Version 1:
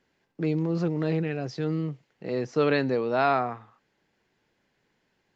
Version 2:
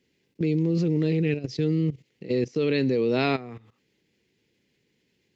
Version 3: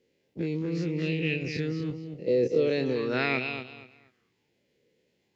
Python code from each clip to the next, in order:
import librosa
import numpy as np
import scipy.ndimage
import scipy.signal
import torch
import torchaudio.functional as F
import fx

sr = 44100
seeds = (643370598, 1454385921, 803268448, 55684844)

y1 = fx.band_shelf(x, sr, hz=1000.0, db=-14.5, octaves=1.7)
y1 = fx.level_steps(y1, sr, step_db=16)
y1 = scipy.signal.sosfilt(scipy.signal.butter(2, 57.0, 'highpass', fs=sr, output='sos'), y1)
y1 = y1 * librosa.db_to_amplitude(9.0)
y2 = fx.spec_dilate(y1, sr, span_ms=60)
y2 = fx.echo_feedback(y2, sr, ms=237, feedback_pct=23, wet_db=-8)
y2 = fx.bell_lfo(y2, sr, hz=0.41, low_hz=500.0, high_hz=2900.0, db=13)
y2 = y2 * librosa.db_to_amplitude(-8.5)